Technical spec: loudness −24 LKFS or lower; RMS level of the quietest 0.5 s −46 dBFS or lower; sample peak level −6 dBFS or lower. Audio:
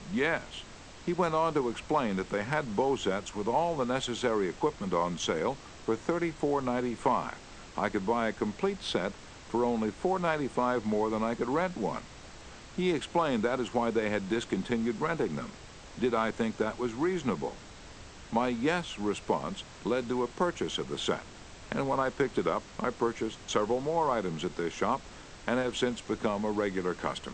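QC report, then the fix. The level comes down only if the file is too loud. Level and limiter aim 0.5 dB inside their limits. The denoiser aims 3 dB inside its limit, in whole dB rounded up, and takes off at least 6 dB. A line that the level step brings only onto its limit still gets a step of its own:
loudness −31.0 LKFS: in spec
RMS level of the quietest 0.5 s −48 dBFS: in spec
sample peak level −12.0 dBFS: in spec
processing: no processing needed

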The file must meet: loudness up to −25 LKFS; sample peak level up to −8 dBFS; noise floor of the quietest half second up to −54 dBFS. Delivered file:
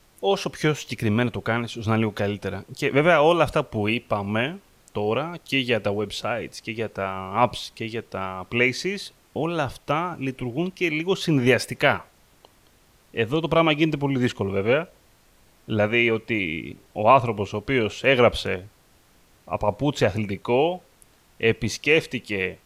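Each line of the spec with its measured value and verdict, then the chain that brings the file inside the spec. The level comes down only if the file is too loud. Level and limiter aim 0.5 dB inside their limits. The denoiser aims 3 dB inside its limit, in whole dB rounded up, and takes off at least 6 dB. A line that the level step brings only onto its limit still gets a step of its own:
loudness −23.5 LKFS: out of spec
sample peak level −4.0 dBFS: out of spec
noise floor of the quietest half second −58 dBFS: in spec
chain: level −2 dB
brickwall limiter −8.5 dBFS

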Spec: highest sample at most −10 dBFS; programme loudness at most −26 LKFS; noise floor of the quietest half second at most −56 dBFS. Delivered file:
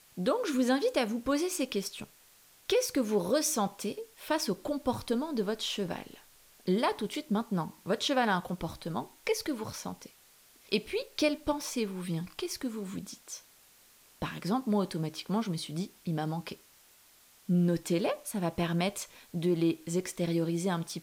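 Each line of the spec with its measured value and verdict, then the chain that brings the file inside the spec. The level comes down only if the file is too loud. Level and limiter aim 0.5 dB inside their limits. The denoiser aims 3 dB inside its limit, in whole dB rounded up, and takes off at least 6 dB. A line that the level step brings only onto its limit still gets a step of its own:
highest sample −12.5 dBFS: in spec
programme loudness −32.0 LKFS: in spec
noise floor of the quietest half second −61 dBFS: in spec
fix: no processing needed

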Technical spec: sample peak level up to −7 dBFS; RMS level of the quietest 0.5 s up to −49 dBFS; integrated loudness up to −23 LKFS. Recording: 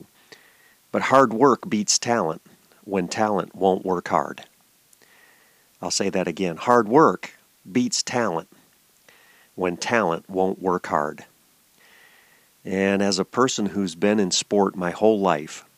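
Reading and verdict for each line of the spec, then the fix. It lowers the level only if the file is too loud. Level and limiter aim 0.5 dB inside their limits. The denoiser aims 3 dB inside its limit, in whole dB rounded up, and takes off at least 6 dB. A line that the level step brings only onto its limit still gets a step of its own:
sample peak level −3.5 dBFS: out of spec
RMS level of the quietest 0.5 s −59 dBFS: in spec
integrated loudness −22.0 LKFS: out of spec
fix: level −1.5 dB
brickwall limiter −7.5 dBFS

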